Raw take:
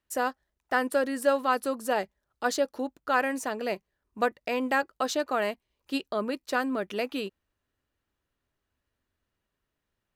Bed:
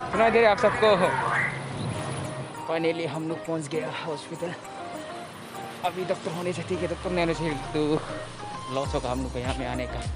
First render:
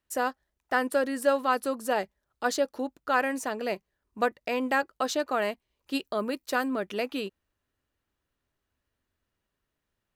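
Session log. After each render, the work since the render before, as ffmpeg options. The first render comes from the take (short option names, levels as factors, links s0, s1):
-filter_complex "[0:a]asettb=1/sr,asplit=3[s0][s1][s2];[s0]atrim=end=5.954[s3];[s1]atrim=start=5.95:end=6.68,asetpts=PTS-STARTPTS,afade=t=in:d=0.004:c=qsin,afade=t=out:st=0.726:d=0.004:c=qsin,highshelf=f=11000:g=10[s4];[s2]atrim=start=6.676[s5];[s3][s4]acrossfade=d=0.004:c1=hsin:c2=qsin[s6];[s6][s5]acrossfade=d=0.004:c1=qsin:c2=hsin"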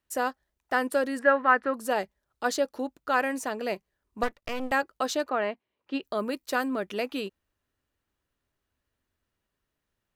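-filter_complex "[0:a]asettb=1/sr,asplit=3[s0][s1][s2];[s0]atrim=end=1.194[s3];[s1]atrim=start=1.19:end=1.74,asetpts=PTS-STARTPTS,afade=t=in:d=0.004:c=qsin,afade=t=out:st=0.546:d=0.004:c=qsin,lowpass=f=1800:t=q:w=3.8[s4];[s2]atrim=start=1.736[s5];[s3][s4]acrossfade=d=0.004:c1=hsin:c2=qsin[s6];[s6][s5]acrossfade=d=0.004:c1=qsin:c2=hsin,asettb=1/sr,asplit=3[s7][s8][s9];[s7]atrim=end=4.234[s10];[s8]atrim=start=4.23:end=4.72,asetpts=PTS-STARTPTS,afade=t=in:d=0.004:c=qsin,afade=t=out:st=0.486:d=0.004:c=qsin,aeval=exprs='max(val(0),0)':c=same[s11];[s9]atrim=start=4.716[s12];[s10][s11]acrossfade=d=0.004:c1=hsin:c2=qsin[s13];[s13][s12]acrossfade=d=0.004:c1=qsin:c2=hsin,asettb=1/sr,asplit=3[s14][s15][s16];[s14]atrim=end=5.294[s17];[s15]atrim=start=5.29:end=6.03,asetpts=PTS-STARTPTS,afade=t=in:d=0.004:c=qsin,afade=t=out:st=0.736:d=0.004:c=qsin,highpass=160,lowpass=2700[s18];[s16]atrim=start=6.026[s19];[s17][s18]acrossfade=d=0.004:c1=hsin:c2=qsin[s20];[s20][s19]acrossfade=d=0.004:c1=qsin:c2=hsin"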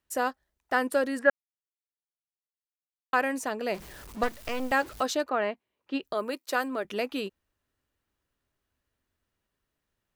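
-filter_complex "[0:a]asettb=1/sr,asplit=3[s0][s1][s2];[s0]atrim=end=3.744[s3];[s1]atrim=start=3.74:end=5.03,asetpts=PTS-STARTPTS,afade=t=in:d=0.004:c=qsin,afade=t=out:st=1.286:d=0.004:c=qsin,aeval=exprs='val(0)+0.5*0.0106*sgn(val(0))':c=same[s4];[s2]atrim=start=5.026[s5];[s3][s4]acrossfade=d=0.004:c1=hsin:c2=qsin[s6];[s6][s5]acrossfade=d=0.004:c1=qsin:c2=hsin,asettb=1/sr,asplit=3[s7][s8][s9];[s7]atrim=end=6.134[s10];[s8]atrim=start=6.13:end=6.85,asetpts=PTS-STARTPTS,afade=t=in:d=0.004:c=qsin,afade=t=out:st=0.716:d=0.004:c=qsin,highpass=310[s11];[s9]atrim=start=6.846[s12];[s10][s11]acrossfade=d=0.004:c1=hsin:c2=qsin[s13];[s13][s12]acrossfade=d=0.004:c1=qsin:c2=hsin,asplit=3[s14][s15][s16];[s14]atrim=end=1.3,asetpts=PTS-STARTPTS,afade=t=out:st=1.296:d=0.004:c=hsin[s17];[s15]atrim=start=1.3:end=3.13,asetpts=PTS-STARTPTS,volume=0[s18];[s16]atrim=start=3.13,asetpts=PTS-STARTPTS,afade=t=in:d=0.004:c=hsin[s19];[s17][s18][s19]concat=n=3:v=0:a=1"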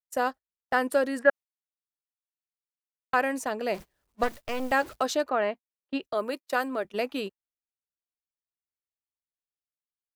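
-af "agate=range=0.0282:threshold=0.0158:ratio=16:detection=peak,equalizer=f=650:t=o:w=0.77:g=2.5"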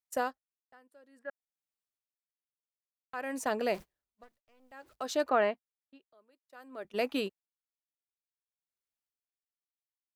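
-af "aeval=exprs='val(0)*pow(10,-36*(0.5-0.5*cos(2*PI*0.56*n/s))/20)':c=same"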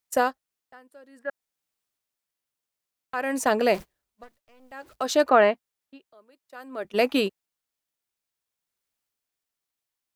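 -af "volume=2.99"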